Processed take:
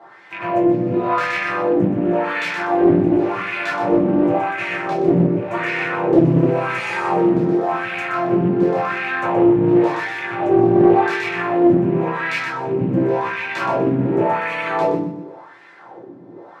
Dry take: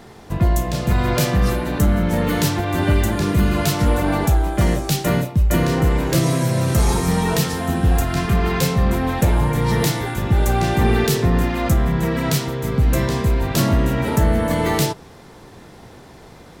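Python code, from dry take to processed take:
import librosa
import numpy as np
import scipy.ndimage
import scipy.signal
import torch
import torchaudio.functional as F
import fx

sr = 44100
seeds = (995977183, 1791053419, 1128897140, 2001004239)

p1 = fx.rattle_buzz(x, sr, strikes_db=-19.0, level_db=-15.0)
p2 = scipy.signal.sosfilt(scipy.signal.butter(4, 140.0, 'highpass', fs=sr, output='sos'), p1)
p3 = fx.high_shelf(p2, sr, hz=11000.0, db=-9.5)
p4 = p3 + fx.echo_feedback(p3, sr, ms=123, feedback_pct=41, wet_db=-4.0, dry=0)
p5 = fx.rev_fdn(p4, sr, rt60_s=0.58, lf_ratio=1.0, hf_ratio=0.45, size_ms=52.0, drr_db=-7.0)
p6 = fx.wah_lfo(p5, sr, hz=0.91, low_hz=240.0, high_hz=2200.0, q=2.2)
y = fx.doppler_dist(p6, sr, depth_ms=0.35)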